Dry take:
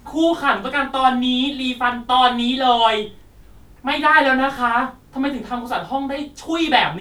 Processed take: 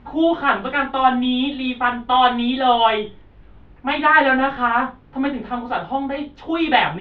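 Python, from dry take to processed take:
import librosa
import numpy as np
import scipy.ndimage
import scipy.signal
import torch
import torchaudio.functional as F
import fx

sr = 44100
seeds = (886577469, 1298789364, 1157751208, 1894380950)

y = scipy.signal.sosfilt(scipy.signal.butter(4, 3200.0, 'lowpass', fs=sr, output='sos'), x)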